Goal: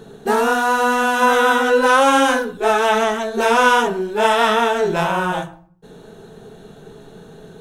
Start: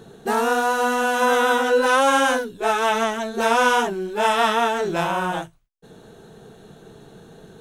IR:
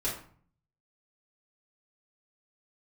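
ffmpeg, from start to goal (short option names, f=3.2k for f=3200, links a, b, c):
-filter_complex "[0:a]asplit=2[a][b];[1:a]atrim=start_sample=2205,lowpass=5.1k[c];[b][c]afir=irnorm=-1:irlink=0,volume=-12dB[d];[a][d]amix=inputs=2:normalize=0,volume=2dB"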